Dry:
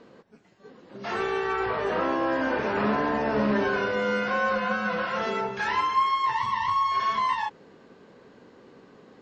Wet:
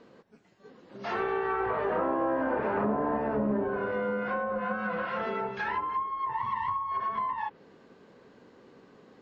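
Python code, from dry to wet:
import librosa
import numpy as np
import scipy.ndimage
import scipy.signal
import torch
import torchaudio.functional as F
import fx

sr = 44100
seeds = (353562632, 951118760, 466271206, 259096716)

y = fx.env_lowpass_down(x, sr, base_hz=800.0, full_db=-20.5)
y = fx.peak_eq(y, sr, hz=800.0, db=3.0, octaves=1.8, at=(0.99, 3.17))
y = y * librosa.db_to_amplitude(-3.5)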